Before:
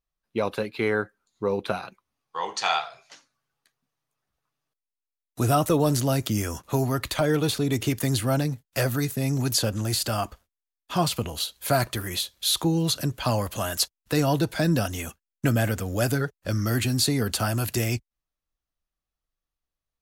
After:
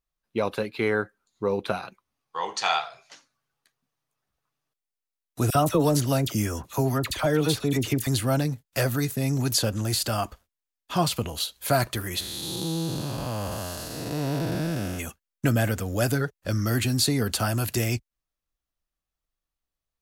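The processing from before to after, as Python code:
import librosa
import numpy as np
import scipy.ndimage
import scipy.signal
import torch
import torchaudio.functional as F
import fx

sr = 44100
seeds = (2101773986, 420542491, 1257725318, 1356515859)

y = fx.dispersion(x, sr, late='lows', ms=51.0, hz=1400.0, at=(5.5, 8.07))
y = fx.spec_blur(y, sr, span_ms=443.0, at=(12.19, 14.98), fade=0.02)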